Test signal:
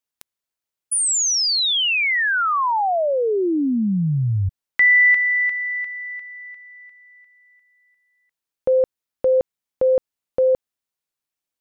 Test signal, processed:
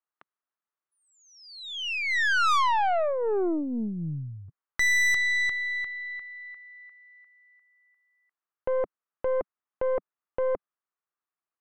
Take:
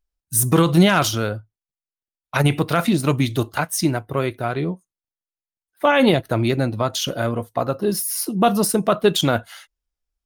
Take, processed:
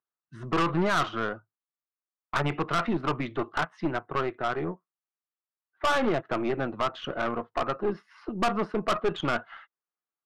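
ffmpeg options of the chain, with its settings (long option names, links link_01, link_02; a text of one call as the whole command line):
ffmpeg -i in.wav -af "highpass=frequency=180:width=0.5412,highpass=frequency=180:width=1.3066,equalizer=frequency=190:width_type=q:width=4:gain=-8,equalizer=frequency=270:width_type=q:width=4:gain=-8,equalizer=frequency=520:width_type=q:width=4:gain=-6,equalizer=frequency=1200:width_type=q:width=4:gain=7,equalizer=frequency=2300:width_type=q:width=4:gain=-5,lowpass=frequency=2300:width=0.5412,lowpass=frequency=2300:width=1.3066,aeval=exprs='(tanh(11.2*val(0)+0.5)-tanh(0.5))/11.2':channel_layout=same" out.wav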